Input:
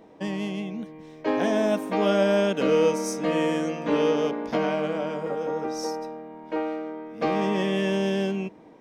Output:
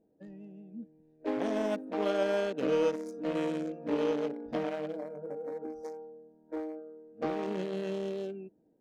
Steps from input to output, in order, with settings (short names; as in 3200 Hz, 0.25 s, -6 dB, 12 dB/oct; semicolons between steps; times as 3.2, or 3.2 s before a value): Wiener smoothing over 41 samples; 4.94–7.25 bell 3200 Hz -12.5 dB -> -3.5 dB 1.4 oct; spectral noise reduction 11 dB; gain -6 dB